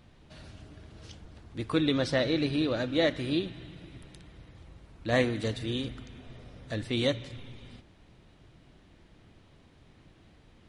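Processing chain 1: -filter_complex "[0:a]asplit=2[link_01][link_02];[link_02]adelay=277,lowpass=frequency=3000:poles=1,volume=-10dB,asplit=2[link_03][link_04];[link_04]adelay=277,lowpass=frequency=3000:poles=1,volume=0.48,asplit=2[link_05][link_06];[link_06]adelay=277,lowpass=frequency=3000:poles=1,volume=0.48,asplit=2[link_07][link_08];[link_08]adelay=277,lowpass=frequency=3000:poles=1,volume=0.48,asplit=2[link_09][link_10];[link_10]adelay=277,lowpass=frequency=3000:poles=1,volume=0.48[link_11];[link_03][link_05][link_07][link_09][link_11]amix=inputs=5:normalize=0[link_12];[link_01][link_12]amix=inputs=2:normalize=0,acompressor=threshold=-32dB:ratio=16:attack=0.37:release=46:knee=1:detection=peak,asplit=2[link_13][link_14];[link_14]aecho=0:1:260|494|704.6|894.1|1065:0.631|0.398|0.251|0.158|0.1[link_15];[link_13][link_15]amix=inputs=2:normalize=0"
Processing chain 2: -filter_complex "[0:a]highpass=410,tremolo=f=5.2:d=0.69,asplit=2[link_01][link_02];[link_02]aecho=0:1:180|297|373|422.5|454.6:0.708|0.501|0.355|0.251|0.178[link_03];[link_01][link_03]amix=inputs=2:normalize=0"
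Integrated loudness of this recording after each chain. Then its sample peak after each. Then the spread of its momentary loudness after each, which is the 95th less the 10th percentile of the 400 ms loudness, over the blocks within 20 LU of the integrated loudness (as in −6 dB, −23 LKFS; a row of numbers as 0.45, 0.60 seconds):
−38.5, −33.0 LKFS; −24.0, −13.0 dBFS; 20, 16 LU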